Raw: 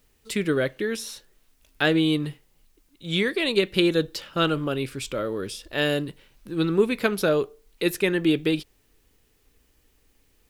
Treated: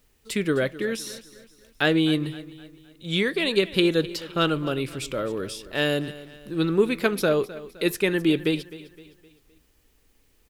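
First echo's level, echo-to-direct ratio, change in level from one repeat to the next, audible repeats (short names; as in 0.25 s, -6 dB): -17.0 dB, -16.0 dB, -7.5 dB, 3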